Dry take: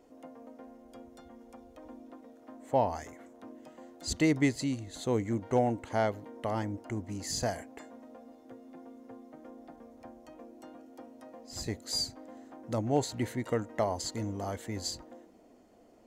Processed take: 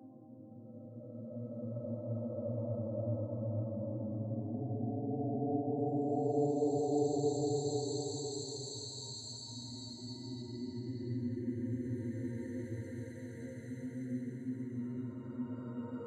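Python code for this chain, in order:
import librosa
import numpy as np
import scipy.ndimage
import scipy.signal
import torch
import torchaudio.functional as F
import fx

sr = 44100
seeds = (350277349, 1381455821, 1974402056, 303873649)

y = fx.spec_expand(x, sr, power=2.3)
y = fx.paulstretch(y, sr, seeds[0], factor=19.0, window_s=0.25, from_s=12.61)
y = y * librosa.db_to_amplitude(-6.0)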